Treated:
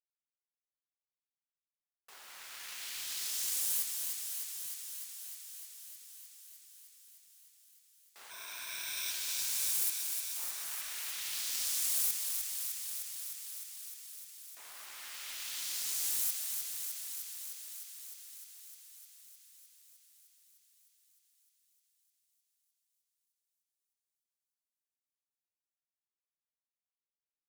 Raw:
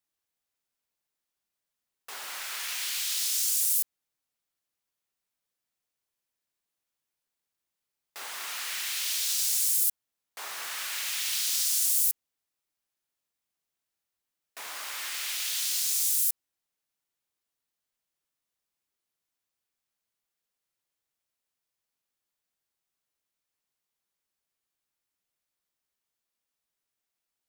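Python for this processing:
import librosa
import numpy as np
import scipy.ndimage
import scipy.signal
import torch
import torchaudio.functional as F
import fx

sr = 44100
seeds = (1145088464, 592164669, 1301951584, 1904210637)

y = fx.ripple_eq(x, sr, per_octave=1.6, db=14, at=(8.3, 9.11))
y = fx.power_curve(y, sr, exponent=1.4)
y = fx.echo_thinned(y, sr, ms=305, feedback_pct=78, hz=370.0, wet_db=-5.5)
y = y * librosa.db_to_amplitude(-4.5)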